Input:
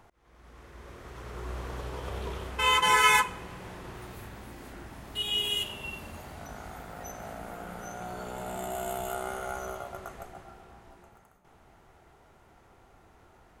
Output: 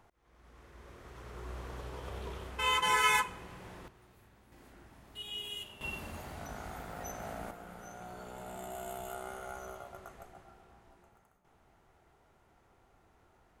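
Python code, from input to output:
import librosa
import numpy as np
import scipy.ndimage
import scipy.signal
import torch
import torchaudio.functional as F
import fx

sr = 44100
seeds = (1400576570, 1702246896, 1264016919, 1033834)

y = fx.gain(x, sr, db=fx.steps((0.0, -6.0), (3.88, -18.0), (4.52, -12.0), (5.81, -1.0), (7.51, -8.0)))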